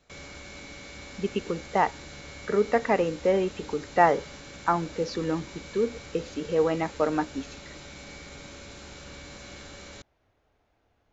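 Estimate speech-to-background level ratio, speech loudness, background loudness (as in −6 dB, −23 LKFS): 16.0 dB, −27.5 LKFS, −43.5 LKFS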